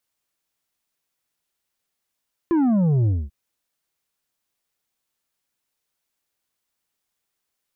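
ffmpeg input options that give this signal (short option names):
-f lavfi -i "aevalsrc='0.15*clip((0.79-t)/0.23,0,1)*tanh(2.11*sin(2*PI*350*0.79/log(65/350)*(exp(log(65/350)*t/0.79)-1)))/tanh(2.11)':d=0.79:s=44100"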